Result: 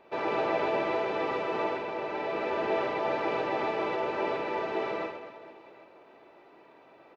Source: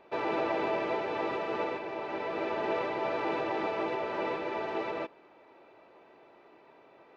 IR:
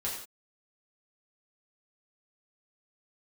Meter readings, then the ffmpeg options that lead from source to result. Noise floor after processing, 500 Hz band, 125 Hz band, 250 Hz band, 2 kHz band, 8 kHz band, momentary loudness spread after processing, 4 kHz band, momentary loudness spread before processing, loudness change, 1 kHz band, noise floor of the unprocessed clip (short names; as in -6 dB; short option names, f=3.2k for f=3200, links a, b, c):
-56 dBFS, +2.5 dB, +2.0 dB, +0.5 dB, +2.0 dB, n/a, 7 LU, +2.0 dB, 5 LU, +2.5 dB, +2.5 dB, -58 dBFS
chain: -af "bandreject=f=50:t=h:w=6,bandreject=f=100:t=h:w=6,aecho=1:1:50|130|258|462.8|790.5:0.631|0.398|0.251|0.158|0.1"